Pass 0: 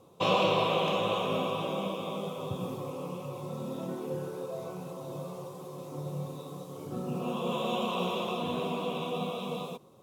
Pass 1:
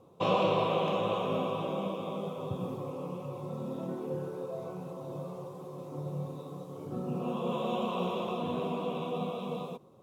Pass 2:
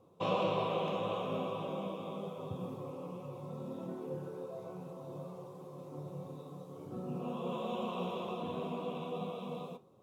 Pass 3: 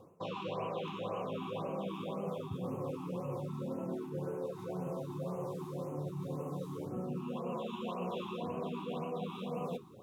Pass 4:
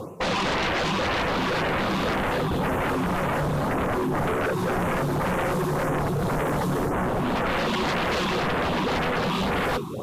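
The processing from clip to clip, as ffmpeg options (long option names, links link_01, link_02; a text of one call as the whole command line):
ffmpeg -i in.wav -af "highshelf=frequency=2100:gain=-9.5" out.wav
ffmpeg -i in.wav -af "flanger=delay=9.8:depth=2.7:regen=-70:speed=1.3:shape=triangular,volume=-1dB" out.wav
ffmpeg -i in.wav -af "areverse,acompressor=threshold=-45dB:ratio=12,areverse,afftfilt=real='re*(1-between(b*sr/1024,530*pow(4400/530,0.5+0.5*sin(2*PI*1.9*pts/sr))/1.41,530*pow(4400/530,0.5+0.5*sin(2*PI*1.9*pts/sr))*1.41))':imag='im*(1-between(b*sr/1024,530*pow(4400/530,0.5+0.5*sin(2*PI*1.9*pts/sr))/1.41,530*pow(4400/530,0.5+0.5*sin(2*PI*1.9*pts/sr))*1.41))':win_size=1024:overlap=0.75,volume=10.5dB" out.wav
ffmpeg -i in.wav -af "aeval=exprs='0.0447*sin(PI/2*4.47*val(0)/0.0447)':channel_layout=same,volume=5.5dB" -ar 44100 -c:a libvorbis -b:a 48k out.ogg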